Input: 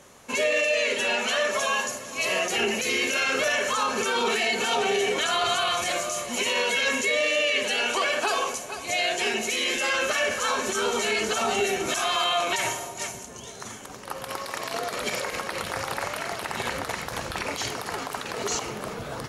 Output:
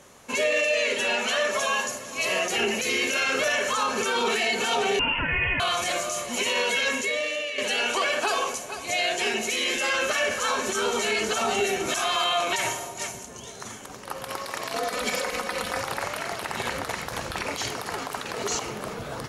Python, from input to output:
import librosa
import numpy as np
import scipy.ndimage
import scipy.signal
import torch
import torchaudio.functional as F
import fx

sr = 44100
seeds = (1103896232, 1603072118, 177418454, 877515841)

y = fx.freq_invert(x, sr, carrier_hz=3200, at=(4.99, 5.6))
y = fx.comb(y, sr, ms=4.0, depth=0.65, at=(14.75, 15.81))
y = fx.edit(y, sr, fx.fade_out_to(start_s=6.76, length_s=0.82, floor_db=-9.5), tone=tone)